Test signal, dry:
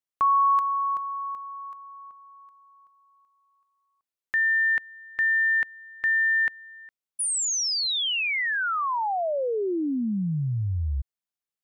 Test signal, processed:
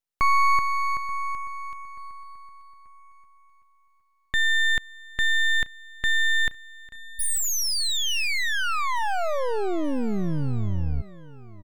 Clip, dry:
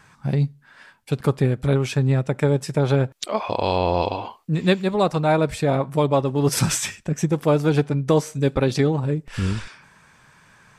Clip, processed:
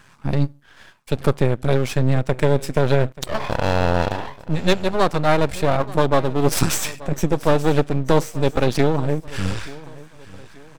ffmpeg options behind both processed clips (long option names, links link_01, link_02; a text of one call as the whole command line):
ffmpeg -i in.wav -af "aeval=exprs='max(val(0),0)':channel_layout=same,aecho=1:1:883|1766|2649:0.106|0.0403|0.0153,volume=5dB" out.wav